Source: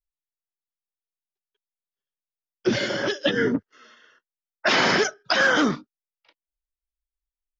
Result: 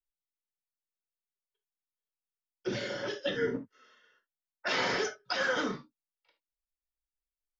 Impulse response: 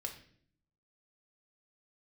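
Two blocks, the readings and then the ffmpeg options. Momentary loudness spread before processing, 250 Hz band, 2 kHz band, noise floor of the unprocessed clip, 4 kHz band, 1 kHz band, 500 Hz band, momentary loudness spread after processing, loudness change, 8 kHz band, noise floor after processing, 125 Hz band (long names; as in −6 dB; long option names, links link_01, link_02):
9 LU, −13.0 dB, −11.5 dB, below −85 dBFS, −10.5 dB, −10.5 dB, −9.0 dB, 10 LU, −10.5 dB, can't be measured, below −85 dBFS, −10.5 dB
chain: -filter_complex "[1:a]atrim=start_sample=2205,atrim=end_sample=3528[link_01];[0:a][link_01]afir=irnorm=-1:irlink=0,volume=-9dB"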